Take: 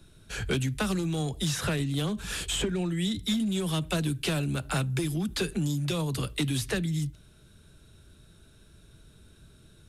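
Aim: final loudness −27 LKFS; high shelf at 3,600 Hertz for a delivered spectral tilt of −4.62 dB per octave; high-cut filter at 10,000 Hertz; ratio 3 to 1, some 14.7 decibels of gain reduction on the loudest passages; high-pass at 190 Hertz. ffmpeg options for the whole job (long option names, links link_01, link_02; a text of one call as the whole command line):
ffmpeg -i in.wav -af "highpass=190,lowpass=10000,highshelf=frequency=3600:gain=-5,acompressor=threshold=-47dB:ratio=3,volume=18.5dB" out.wav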